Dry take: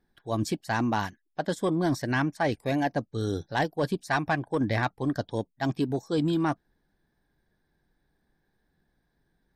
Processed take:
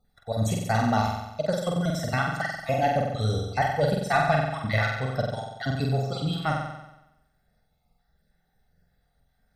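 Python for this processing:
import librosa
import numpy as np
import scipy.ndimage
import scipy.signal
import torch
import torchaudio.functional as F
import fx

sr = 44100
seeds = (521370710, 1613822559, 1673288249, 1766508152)

y = fx.spec_dropout(x, sr, seeds[0], share_pct=35)
y = y + 0.9 * np.pad(y, (int(1.5 * sr / 1000.0), 0))[:len(y)]
y = fx.room_flutter(y, sr, wall_m=7.9, rt60_s=0.93)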